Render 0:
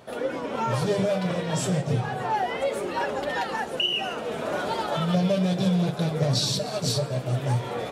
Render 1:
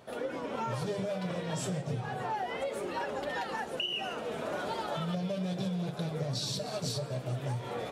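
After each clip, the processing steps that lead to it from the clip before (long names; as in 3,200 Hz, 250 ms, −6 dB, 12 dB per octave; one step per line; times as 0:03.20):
downward compressor, threshold −25 dBFS, peak gain reduction 7 dB
level −5.5 dB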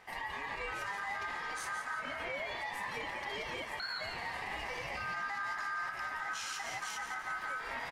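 brickwall limiter −29 dBFS, peak gain reduction 6 dB
ring modulation 1,400 Hz
echo with shifted repeats 172 ms, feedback 36%, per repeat +77 Hz, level −9 dB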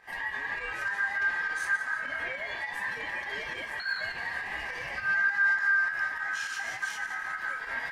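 fake sidechain pumping 102 BPM, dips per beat 2, −9 dB, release 73 ms
on a send at −5.5 dB: high-pass with resonance 1,700 Hz, resonance Q 8.2 + convolution reverb RT60 0.35 s, pre-delay 4 ms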